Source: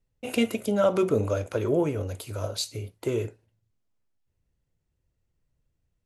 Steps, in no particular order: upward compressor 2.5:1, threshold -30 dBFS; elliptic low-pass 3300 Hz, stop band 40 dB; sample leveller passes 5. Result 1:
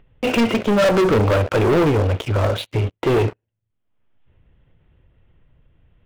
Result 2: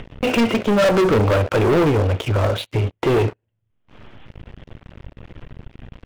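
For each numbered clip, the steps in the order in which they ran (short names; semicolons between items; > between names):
elliptic low-pass > sample leveller > upward compressor; upward compressor > elliptic low-pass > sample leveller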